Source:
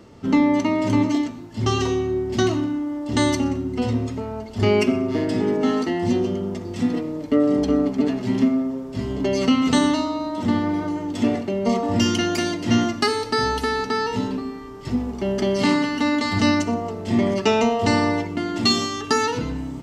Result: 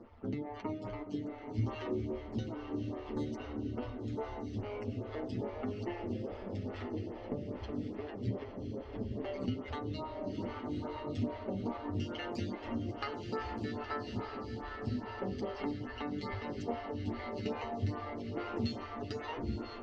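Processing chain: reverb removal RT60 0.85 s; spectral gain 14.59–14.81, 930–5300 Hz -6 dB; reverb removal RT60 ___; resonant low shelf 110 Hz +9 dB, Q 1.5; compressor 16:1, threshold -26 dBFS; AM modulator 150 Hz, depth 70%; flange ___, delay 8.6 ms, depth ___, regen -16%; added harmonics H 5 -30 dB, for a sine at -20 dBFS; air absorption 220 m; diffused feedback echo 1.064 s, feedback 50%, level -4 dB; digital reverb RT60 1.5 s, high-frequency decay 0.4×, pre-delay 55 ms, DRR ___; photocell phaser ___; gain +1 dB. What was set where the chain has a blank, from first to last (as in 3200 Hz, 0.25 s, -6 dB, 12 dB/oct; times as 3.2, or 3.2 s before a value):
0.93 s, 0.54 Hz, 1.3 ms, 11 dB, 2.4 Hz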